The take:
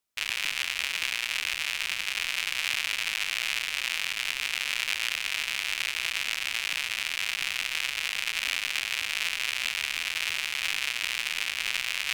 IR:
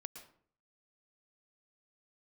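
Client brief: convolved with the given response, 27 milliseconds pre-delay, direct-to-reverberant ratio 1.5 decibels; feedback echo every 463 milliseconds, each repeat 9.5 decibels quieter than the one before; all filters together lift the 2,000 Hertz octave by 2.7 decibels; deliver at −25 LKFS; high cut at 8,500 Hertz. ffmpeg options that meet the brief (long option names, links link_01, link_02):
-filter_complex "[0:a]lowpass=8500,equalizer=frequency=2000:width_type=o:gain=3.5,aecho=1:1:463|926|1389|1852:0.335|0.111|0.0365|0.012,asplit=2[link_01][link_02];[1:a]atrim=start_sample=2205,adelay=27[link_03];[link_02][link_03]afir=irnorm=-1:irlink=0,volume=3dB[link_04];[link_01][link_04]amix=inputs=2:normalize=0,volume=-1.5dB"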